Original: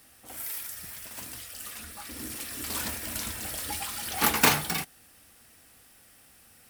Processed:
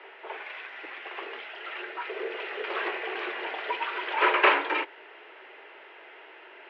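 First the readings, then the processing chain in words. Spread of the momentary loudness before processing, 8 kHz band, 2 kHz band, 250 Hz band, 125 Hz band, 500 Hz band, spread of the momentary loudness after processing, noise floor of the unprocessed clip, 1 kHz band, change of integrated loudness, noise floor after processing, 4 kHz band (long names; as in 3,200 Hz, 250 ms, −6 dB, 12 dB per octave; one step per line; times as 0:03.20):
17 LU, below −40 dB, +5.5 dB, −3.5 dB, below −40 dB, +8.0 dB, 26 LU, −57 dBFS, +5.0 dB, +0.5 dB, −50 dBFS, −2.5 dB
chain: echo ahead of the sound 268 ms −21 dB
power curve on the samples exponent 0.7
single-sideband voice off tune +140 Hz 220–2,700 Hz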